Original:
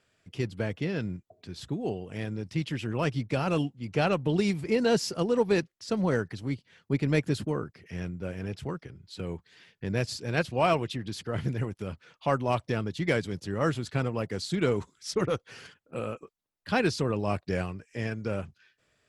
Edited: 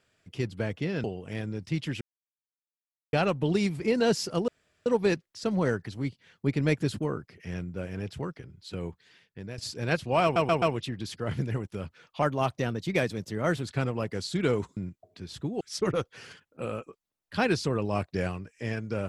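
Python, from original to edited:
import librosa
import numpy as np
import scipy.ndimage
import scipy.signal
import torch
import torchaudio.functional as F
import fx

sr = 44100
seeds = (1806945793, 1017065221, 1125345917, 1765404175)

y = fx.edit(x, sr, fx.move(start_s=1.04, length_s=0.84, to_s=14.95),
    fx.silence(start_s=2.85, length_s=1.12),
    fx.insert_room_tone(at_s=5.32, length_s=0.38),
    fx.fade_out_to(start_s=9.32, length_s=0.72, floor_db=-14.0),
    fx.stutter(start_s=10.69, slice_s=0.13, count=4),
    fx.speed_span(start_s=12.29, length_s=1.52, speed=1.08), tone=tone)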